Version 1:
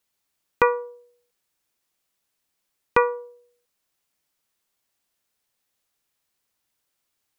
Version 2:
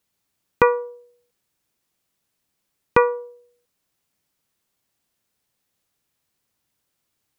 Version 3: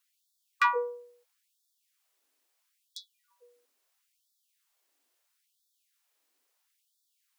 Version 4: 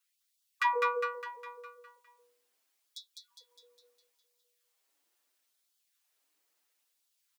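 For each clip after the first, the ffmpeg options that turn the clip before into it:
-af "equalizer=f=130:w=0.42:g=8,volume=1dB"
-af "acontrast=54,afftfilt=real='re*gte(b*sr/1024,220*pow(3400/220,0.5+0.5*sin(2*PI*0.75*pts/sr)))':imag='im*gte(b*sr/1024,220*pow(3400/220,0.5+0.5*sin(2*PI*0.75*pts/sr)))':win_size=1024:overlap=0.75,volume=-6.5dB"
-filter_complex "[0:a]asplit=2[a][b];[b]aecho=0:1:204|408|612|816|1020|1224|1428:0.668|0.361|0.195|0.105|0.0568|0.0307|0.0166[c];[a][c]amix=inputs=2:normalize=0,asplit=2[d][e];[e]adelay=6.7,afreqshift=1.4[f];[d][f]amix=inputs=2:normalize=1"

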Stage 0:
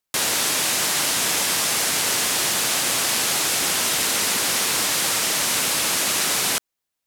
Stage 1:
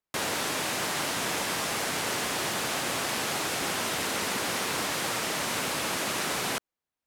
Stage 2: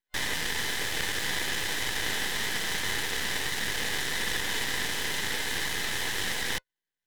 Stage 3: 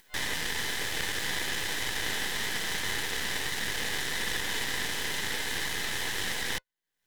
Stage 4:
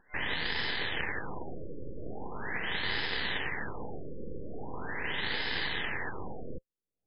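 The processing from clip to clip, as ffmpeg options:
-af "highshelf=f=2.8k:g=-12,volume=-2dB"
-af "aeval=exprs='val(0)*sin(2*PI*1500*n/s)':c=same,superequalizer=7b=1.41:8b=0.501:10b=0.251:11b=2.82:13b=1.78,aeval=exprs='max(val(0),0)':c=same,volume=3.5dB"
-af "acompressor=mode=upward:threshold=-36dB:ratio=2.5,volume=-1.5dB"
-af "afftfilt=real='re*lt(b*sr/1024,560*pow(5300/560,0.5+0.5*sin(2*PI*0.41*pts/sr)))':imag='im*lt(b*sr/1024,560*pow(5300/560,0.5+0.5*sin(2*PI*0.41*pts/sr)))':win_size=1024:overlap=0.75"

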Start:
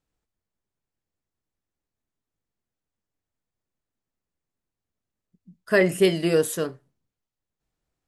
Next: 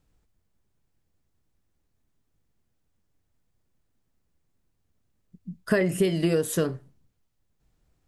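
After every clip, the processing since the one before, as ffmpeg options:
-af "lowshelf=f=220:g=9.5,acompressor=threshold=-26dB:ratio=12,volume=6.5dB"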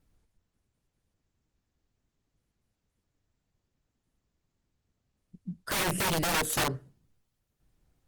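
-af "aeval=exprs='(mod(12.6*val(0)+1,2)-1)/12.6':c=same" -ar 48000 -c:a libopus -b:a 24k

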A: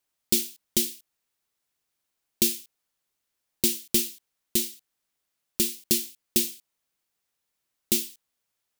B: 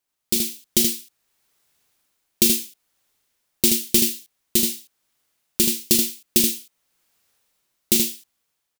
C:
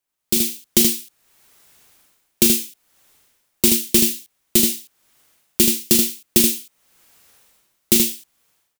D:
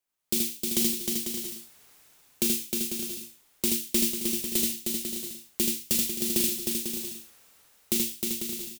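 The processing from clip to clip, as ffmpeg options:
-filter_complex "[0:a]dynaudnorm=f=130:g=7:m=13dB,asplit=2[a][b];[b]aecho=0:1:39|78:0.335|0.596[c];[a][c]amix=inputs=2:normalize=0,volume=-1dB"
-filter_complex "[0:a]equalizer=f=4.5k:w=1.5:g=-2,acrossover=split=140|2800[a][b][c];[c]asoftclip=type=tanh:threshold=-10.5dB[d];[a][b][d]amix=inputs=3:normalize=0,dynaudnorm=f=130:g=5:m=15dB,volume=-1dB"
-filter_complex "[0:a]bandreject=f=50:t=h:w=6,bandreject=f=100:t=h:w=6,bandreject=f=150:t=h:w=6,alimiter=limit=-10dB:level=0:latency=1:release=445,asplit=2[a][b];[b]aecho=0:1:310|496|607.6|674.6|714.7:0.631|0.398|0.251|0.158|0.1[c];[a][c]amix=inputs=2:normalize=0,volume=-4dB"

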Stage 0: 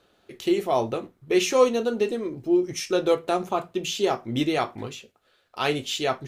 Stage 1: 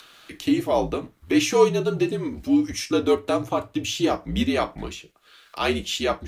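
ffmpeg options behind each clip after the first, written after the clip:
-filter_complex "[0:a]acrossover=split=580|1100[a][b][c];[c]acompressor=mode=upward:threshold=-37dB:ratio=2.5[d];[a][b][d]amix=inputs=3:normalize=0,afreqshift=-63,volume=1.5dB"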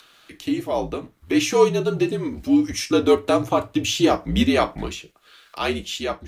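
-af "dynaudnorm=f=220:g=11:m=11.5dB,volume=-3dB"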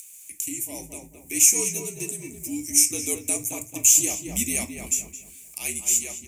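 -filter_complex "[0:a]asplit=2[a][b];[b]adelay=217,lowpass=f=1.9k:p=1,volume=-5dB,asplit=2[c][d];[d]adelay=217,lowpass=f=1.9k:p=1,volume=0.34,asplit=2[e][f];[f]adelay=217,lowpass=f=1.9k:p=1,volume=0.34,asplit=2[g][h];[h]adelay=217,lowpass=f=1.9k:p=1,volume=0.34[i];[c][e][g][i]amix=inputs=4:normalize=0[j];[a][j]amix=inputs=2:normalize=0,aexciter=amount=12.1:drive=2.2:freq=4.5k,firequalizer=gain_entry='entry(210,0);entry(450,-7);entry(860,-7);entry(1400,-18);entry(2300,12);entry(4100,-13);entry(7200,14);entry(13000,9)':delay=0.05:min_phase=1,volume=-12.5dB"

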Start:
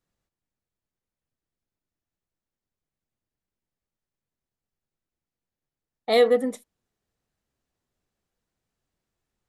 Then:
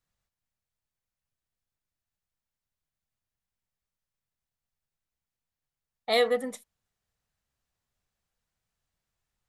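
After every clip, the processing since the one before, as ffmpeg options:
-af "equalizer=f=320:w=0.91:g=-11"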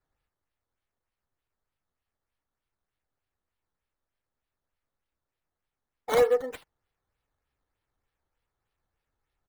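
-filter_complex "[0:a]aecho=1:1:2.3:0.95,acrossover=split=2100[a][b];[b]acrusher=samples=12:mix=1:aa=0.000001:lfo=1:lforange=12:lforate=3.3[c];[a][c]amix=inputs=2:normalize=0,volume=-2dB"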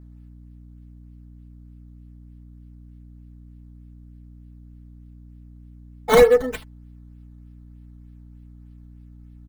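-af "asubboost=boost=2.5:cutoff=240,aecho=1:1:4.6:0.71,aeval=exprs='val(0)+0.00282*(sin(2*PI*60*n/s)+sin(2*PI*2*60*n/s)/2+sin(2*PI*3*60*n/s)/3+sin(2*PI*4*60*n/s)/4+sin(2*PI*5*60*n/s)/5)':c=same,volume=8dB"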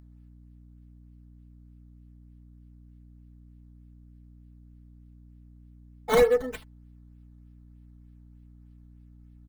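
-af "acompressor=mode=upward:threshold=-54dB:ratio=2.5,volume=-7dB"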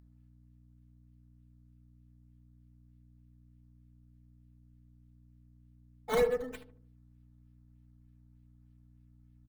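-filter_complex "[0:a]asplit=2[a][b];[b]adelay=74,lowpass=f=880:p=1,volume=-9dB,asplit=2[c][d];[d]adelay=74,lowpass=f=880:p=1,volume=0.48,asplit=2[e][f];[f]adelay=74,lowpass=f=880:p=1,volume=0.48,asplit=2[g][h];[h]adelay=74,lowpass=f=880:p=1,volume=0.48,asplit=2[i][j];[j]adelay=74,lowpass=f=880:p=1,volume=0.48[k];[a][c][e][g][i][k]amix=inputs=6:normalize=0,volume=-8dB"

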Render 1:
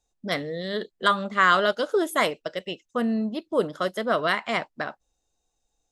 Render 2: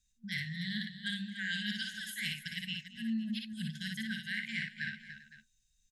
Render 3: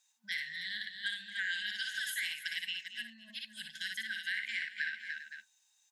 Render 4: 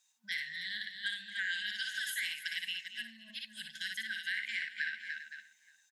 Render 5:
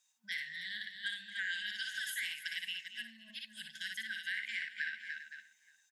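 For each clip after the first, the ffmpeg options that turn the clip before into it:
-af "afftfilt=real='re*(1-between(b*sr/4096,230,1500))':imag='im*(1-between(b*sr/4096,230,1500))':win_size=4096:overlap=0.75,areverse,acompressor=threshold=-35dB:ratio=12,areverse,aecho=1:1:58|221|291|391|511:0.668|0.133|0.282|0.106|0.133"
-af "acompressor=threshold=-41dB:ratio=6,highpass=f=860:t=q:w=6.7,volume=6.5dB"
-af "bandreject=f=850:w=26,aecho=1:1:580:0.0668"
-af "bandreject=f=4.1k:w=17,volume=-2dB"

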